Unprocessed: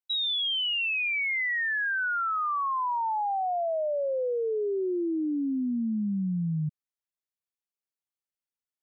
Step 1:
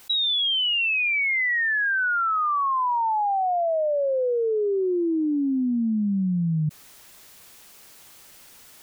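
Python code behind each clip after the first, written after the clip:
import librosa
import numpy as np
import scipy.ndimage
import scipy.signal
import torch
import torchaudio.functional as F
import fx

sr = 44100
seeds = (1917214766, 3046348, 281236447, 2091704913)

y = fx.env_flatten(x, sr, amount_pct=100)
y = F.gain(torch.from_numpy(y), 5.0).numpy()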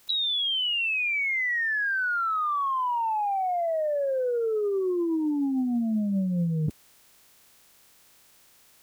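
y = fx.spec_clip(x, sr, under_db=29)
y = fx.upward_expand(y, sr, threshold_db=-40.0, expansion=1.5)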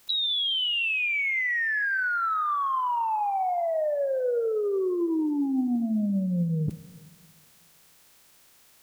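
y = fx.rev_plate(x, sr, seeds[0], rt60_s=1.9, hf_ratio=0.9, predelay_ms=0, drr_db=14.5)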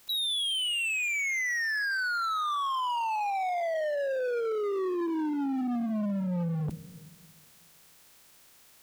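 y = np.clip(x, -10.0 ** (-28.5 / 20.0), 10.0 ** (-28.5 / 20.0))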